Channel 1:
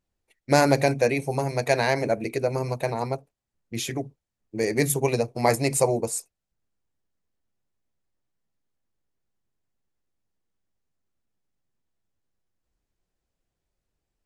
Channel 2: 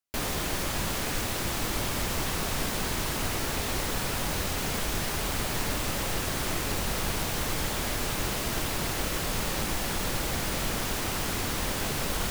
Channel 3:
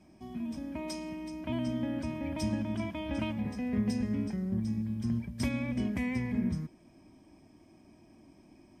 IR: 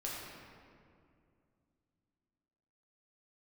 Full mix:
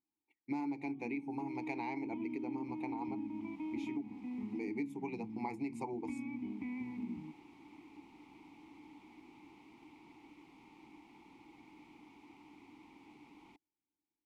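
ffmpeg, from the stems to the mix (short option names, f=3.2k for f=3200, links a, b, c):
-filter_complex "[0:a]volume=1.5dB,asplit=2[a][b];[1:a]adelay=1250,volume=-14dB[c];[2:a]lowpass=3k,adelay=650,volume=2dB[d];[b]apad=whole_len=597993[e];[c][e]sidechaincompress=threshold=-27dB:ratio=8:attack=42:release=953[f];[a][f][d]amix=inputs=3:normalize=0,asplit=3[g][h][i];[g]bandpass=f=300:t=q:w=8,volume=0dB[j];[h]bandpass=f=870:t=q:w=8,volume=-6dB[k];[i]bandpass=f=2.24k:t=q:w=8,volume=-9dB[l];[j][k][l]amix=inputs=3:normalize=0,acompressor=threshold=-36dB:ratio=6"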